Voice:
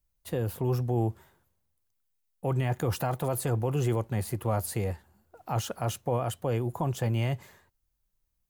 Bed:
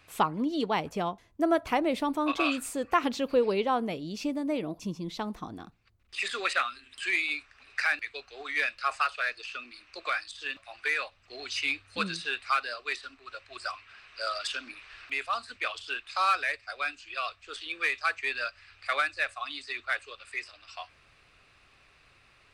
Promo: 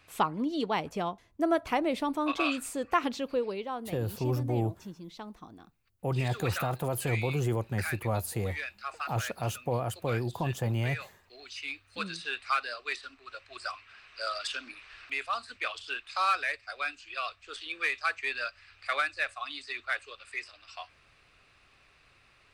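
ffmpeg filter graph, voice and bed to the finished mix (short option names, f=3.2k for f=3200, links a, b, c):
-filter_complex "[0:a]adelay=3600,volume=-2dB[a];[1:a]volume=6dB,afade=t=out:st=2.97:d=0.64:silence=0.421697,afade=t=in:st=11.63:d=0.87:silence=0.421697[b];[a][b]amix=inputs=2:normalize=0"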